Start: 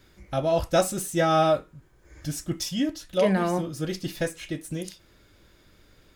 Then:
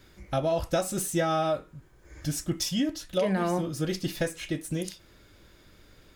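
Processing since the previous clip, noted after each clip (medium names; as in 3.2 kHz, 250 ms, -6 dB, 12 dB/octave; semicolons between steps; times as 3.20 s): compression 6:1, threshold -24 dBFS, peak gain reduction 9 dB; trim +1.5 dB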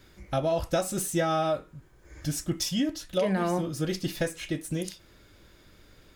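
no audible change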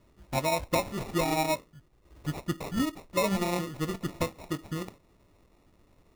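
sample-and-hold 28×; upward expansion 1.5:1, over -35 dBFS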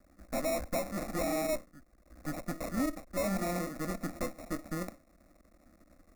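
half-wave rectifier; Chebyshev shaper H 5 -11 dB, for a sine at -16.5 dBFS; static phaser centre 620 Hz, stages 8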